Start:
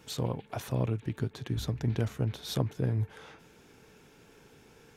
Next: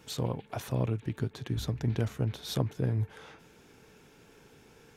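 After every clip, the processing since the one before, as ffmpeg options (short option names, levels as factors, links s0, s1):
-af anull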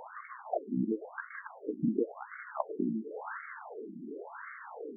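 -af "aeval=exprs='val(0)+0.5*0.0126*sgn(val(0))':c=same,afftfilt=real='re*between(b*sr/1024,240*pow(1600/240,0.5+0.5*sin(2*PI*0.94*pts/sr))/1.41,240*pow(1600/240,0.5+0.5*sin(2*PI*0.94*pts/sr))*1.41)':imag='im*between(b*sr/1024,240*pow(1600/240,0.5+0.5*sin(2*PI*0.94*pts/sr))/1.41,240*pow(1600/240,0.5+0.5*sin(2*PI*0.94*pts/sr))*1.41)':win_size=1024:overlap=0.75,volume=2.11"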